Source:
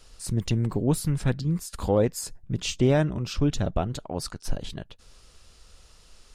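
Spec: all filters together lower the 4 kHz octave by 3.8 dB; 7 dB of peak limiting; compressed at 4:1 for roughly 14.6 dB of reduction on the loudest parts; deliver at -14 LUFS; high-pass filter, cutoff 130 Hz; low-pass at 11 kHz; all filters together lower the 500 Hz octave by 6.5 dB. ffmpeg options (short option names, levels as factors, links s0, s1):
-af "highpass=130,lowpass=11000,equalizer=f=500:t=o:g=-8,equalizer=f=4000:t=o:g=-5,acompressor=threshold=0.0126:ratio=4,volume=28.2,alimiter=limit=0.708:level=0:latency=1"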